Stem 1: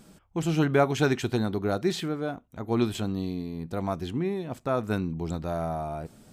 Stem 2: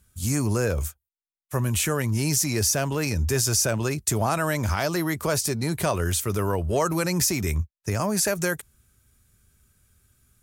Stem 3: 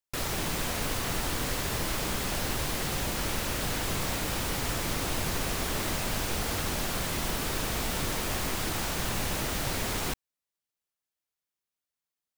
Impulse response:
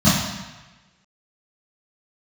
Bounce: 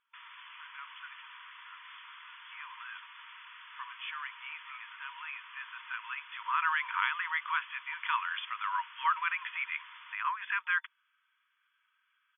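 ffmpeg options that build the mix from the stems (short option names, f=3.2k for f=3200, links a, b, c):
-filter_complex "[0:a]highpass=330,volume=-16.5dB,asplit=2[a][b];[1:a]adelay=2250,volume=0.5dB[c];[2:a]volume=-13dB[d];[b]apad=whole_len=558840[e];[c][e]sidechaincompress=threshold=-51dB:ratio=5:attack=16:release=1490[f];[a][f][d]amix=inputs=3:normalize=0,afftfilt=real='re*between(b*sr/4096,920,3500)':imag='im*between(b*sr/4096,920,3500)':win_size=4096:overlap=0.75"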